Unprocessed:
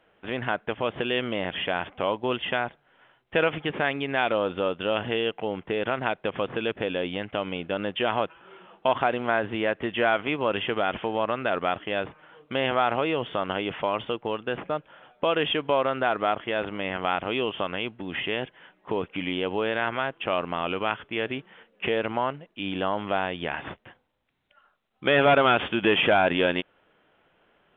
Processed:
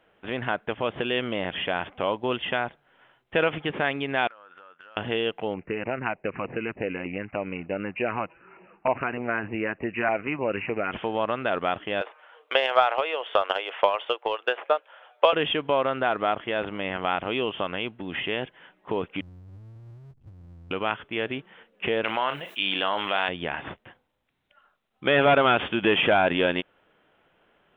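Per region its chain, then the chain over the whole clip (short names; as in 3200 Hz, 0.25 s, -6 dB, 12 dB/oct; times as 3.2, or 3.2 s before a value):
4.27–4.97 band-pass 1500 Hz, Q 3.9 + compressor 16:1, threshold -44 dBFS
5.54–10.92 bell 3500 Hz -4.5 dB 0.37 oct + LFO notch saw down 3.3 Hz 380–1700 Hz + careless resampling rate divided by 8×, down none, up filtered
12.01–15.33 inverse Chebyshev high-pass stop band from 190 Hz, stop band 50 dB + transient shaper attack +10 dB, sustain +1 dB
19.21–20.71 inverse Chebyshev low-pass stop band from 500 Hz, stop band 70 dB + power-law curve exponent 0.5
22.04–23.29 tilt +4.5 dB/oct + doubler 36 ms -13 dB + fast leveller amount 50%
whole clip: dry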